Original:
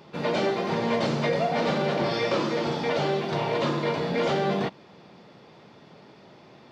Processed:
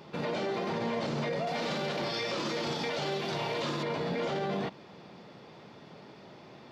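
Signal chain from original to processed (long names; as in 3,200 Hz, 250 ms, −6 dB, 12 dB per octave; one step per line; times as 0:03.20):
0:01.47–0:03.83: high-shelf EQ 2,500 Hz +10 dB
brickwall limiter −25 dBFS, peak gain reduction 12 dB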